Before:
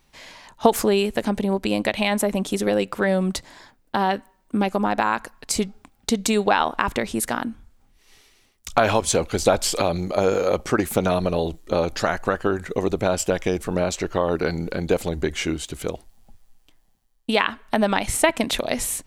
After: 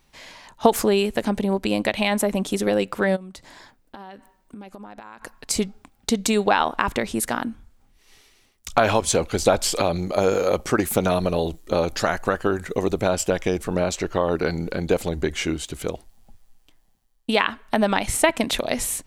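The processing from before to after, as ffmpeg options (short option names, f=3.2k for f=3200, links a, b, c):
-filter_complex "[0:a]asplit=3[a][b][c];[a]afade=t=out:st=3.15:d=0.02[d];[b]acompressor=threshold=-36dB:ratio=12:attack=3.2:release=140:knee=1:detection=peak,afade=t=in:st=3.15:d=0.02,afade=t=out:st=5.21:d=0.02[e];[c]afade=t=in:st=5.21:d=0.02[f];[d][e][f]amix=inputs=3:normalize=0,asettb=1/sr,asplit=3[g][h][i];[g]atrim=end=10.124[j];[h]atrim=start=10.12:end=13.1,asetpts=PTS-STARTPTS,afade=t=in:d=0.004:c=qsin,afade=t=out:st=2.976:d=0.004:c=qsin,highshelf=f=7.6k:g=5.5[k];[i]atrim=start=13.096[l];[j][k]acrossfade=d=0.004:c1=hsin:c2=qsin[m];[m][l]acrossfade=d=0.004:c1=qsin:c2=hsin"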